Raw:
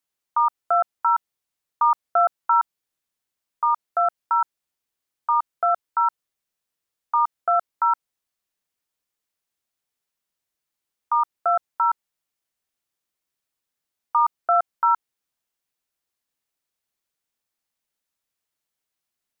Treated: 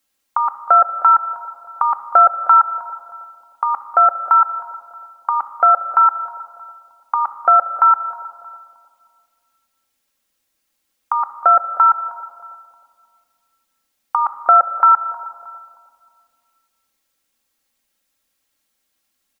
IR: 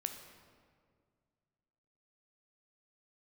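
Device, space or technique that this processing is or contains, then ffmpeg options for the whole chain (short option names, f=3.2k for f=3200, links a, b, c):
compressed reverb return: -filter_complex "[0:a]equalizer=f=890:t=o:w=0.77:g=-2.5,aecho=1:1:3.7:0.62,asplit=2[a][b];[1:a]atrim=start_sample=2205[c];[b][c]afir=irnorm=-1:irlink=0,acompressor=threshold=-24dB:ratio=6,volume=2dB[d];[a][d]amix=inputs=2:normalize=0,asplit=2[e][f];[f]adelay=313,lowpass=f=980:p=1,volume=-13.5dB,asplit=2[g][h];[h]adelay=313,lowpass=f=980:p=1,volume=0.44,asplit=2[i][j];[j]adelay=313,lowpass=f=980:p=1,volume=0.44,asplit=2[k][l];[l]adelay=313,lowpass=f=980:p=1,volume=0.44[m];[e][g][i][k][m]amix=inputs=5:normalize=0,volume=4.5dB"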